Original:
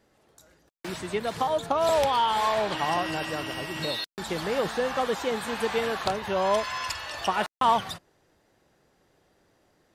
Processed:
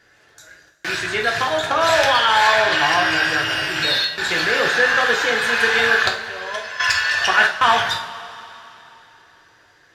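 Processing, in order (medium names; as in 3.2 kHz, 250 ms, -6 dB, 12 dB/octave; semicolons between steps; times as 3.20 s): rattle on loud lows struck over -35 dBFS, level -30 dBFS; high-order bell 3.2 kHz +8.5 dB 2.8 oct; 6.08–6.80 s: gate -18 dBFS, range -14 dB; in parallel at -7.5 dB: saturation -13.5 dBFS, distortion -19 dB; on the sum: graphic EQ with 31 bands 200 Hz -10 dB, 1.6 kHz +10 dB, 8 kHz -5 dB; two-slope reverb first 0.4 s, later 3.4 s, from -18 dB, DRR -0.5 dB; trim -1 dB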